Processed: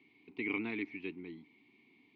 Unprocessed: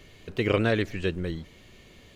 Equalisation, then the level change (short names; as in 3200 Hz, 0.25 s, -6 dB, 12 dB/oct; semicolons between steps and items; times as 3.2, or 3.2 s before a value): dynamic EQ 1700 Hz, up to +7 dB, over -43 dBFS, Q 1.1; vowel filter u; speaker cabinet 170–4800 Hz, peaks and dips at 180 Hz -4 dB, 320 Hz -10 dB, 550 Hz -10 dB, 870 Hz -9 dB, 1300 Hz -5 dB, 3000 Hz -4 dB; +4.5 dB